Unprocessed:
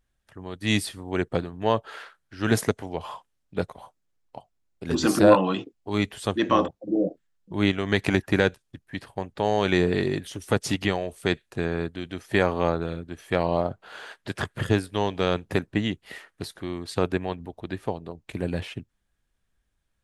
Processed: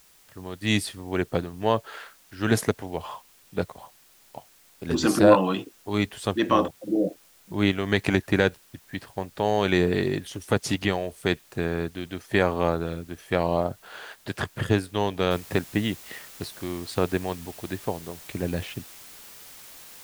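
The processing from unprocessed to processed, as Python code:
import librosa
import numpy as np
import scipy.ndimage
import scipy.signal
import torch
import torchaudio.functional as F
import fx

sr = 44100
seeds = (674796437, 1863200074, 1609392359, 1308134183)

y = fx.noise_floor_step(x, sr, seeds[0], at_s=15.31, before_db=-57, after_db=-46, tilt_db=0.0)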